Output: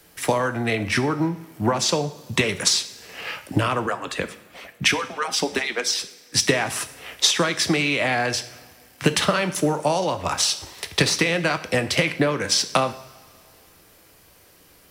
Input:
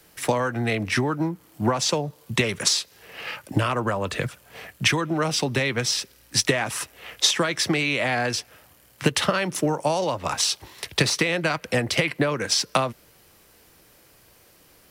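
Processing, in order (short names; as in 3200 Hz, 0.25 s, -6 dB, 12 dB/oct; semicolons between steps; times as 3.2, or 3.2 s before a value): 3.86–6.43 median-filter separation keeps percussive; two-slope reverb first 0.59 s, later 2.4 s, from -17 dB, DRR 9.5 dB; gain +1.5 dB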